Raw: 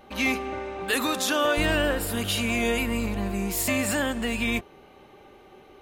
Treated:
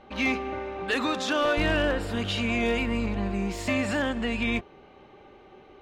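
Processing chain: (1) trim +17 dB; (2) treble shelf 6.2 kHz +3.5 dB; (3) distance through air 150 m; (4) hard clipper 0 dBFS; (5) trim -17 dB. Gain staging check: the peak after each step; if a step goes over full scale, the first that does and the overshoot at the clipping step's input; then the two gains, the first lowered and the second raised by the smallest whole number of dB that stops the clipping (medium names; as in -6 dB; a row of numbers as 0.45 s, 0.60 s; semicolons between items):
+6.0 dBFS, +7.0 dBFS, +5.0 dBFS, 0.0 dBFS, -17.0 dBFS; step 1, 5.0 dB; step 1 +12 dB, step 5 -12 dB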